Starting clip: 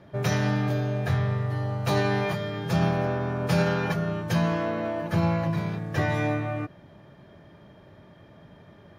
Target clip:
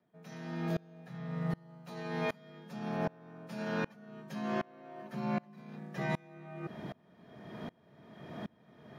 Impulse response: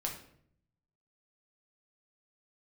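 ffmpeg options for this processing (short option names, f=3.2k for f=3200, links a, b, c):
-af "afreqshift=43,areverse,acompressor=threshold=-39dB:ratio=8,areverse,aeval=exprs='val(0)*pow(10,-29*if(lt(mod(-1.3*n/s,1),2*abs(-1.3)/1000),1-mod(-1.3*n/s,1)/(2*abs(-1.3)/1000),(mod(-1.3*n/s,1)-2*abs(-1.3)/1000)/(1-2*abs(-1.3)/1000))/20)':c=same,volume=10.5dB"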